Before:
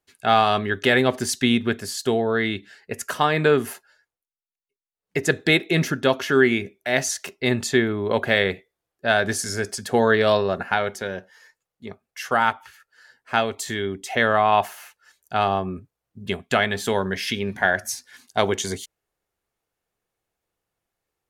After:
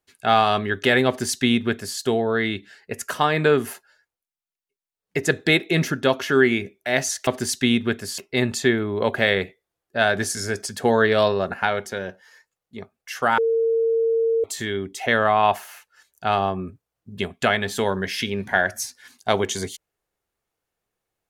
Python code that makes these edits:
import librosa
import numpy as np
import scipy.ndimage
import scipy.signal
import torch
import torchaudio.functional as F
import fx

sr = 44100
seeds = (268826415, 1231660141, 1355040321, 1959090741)

y = fx.edit(x, sr, fx.duplicate(start_s=1.07, length_s=0.91, to_s=7.27),
    fx.bleep(start_s=12.47, length_s=1.06, hz=455.0, db=-17.0), tone=tone)